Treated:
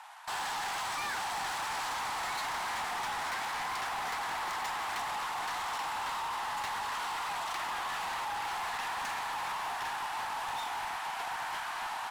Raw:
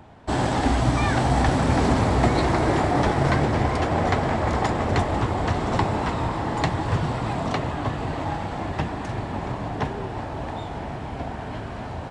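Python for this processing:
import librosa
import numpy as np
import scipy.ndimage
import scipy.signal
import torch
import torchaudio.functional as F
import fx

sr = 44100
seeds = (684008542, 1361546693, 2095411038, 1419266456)

p1 = fx.cvsd(x, sr, bps=64000)
p2 = scipy.signal.sosfilt(scipy.signal.butter(8, 820.0, 'highpass', fs=sr, output='sos'), p1)
p3 = fx.over_compress(p2, sr, threshold_db=-37.0, ratio=-1.0)
p4 = p2 + F.gain(torch.from_numpy(p3), 0.5).numpy()
p5 = np.clip(10.0 ** (28.5 / 20.0) * p4, -1.0, 1.0) / 10.0 ** (28.5 / 20.0)
y = F.gain(torch.from_numpy(p5), -4.5).numpy()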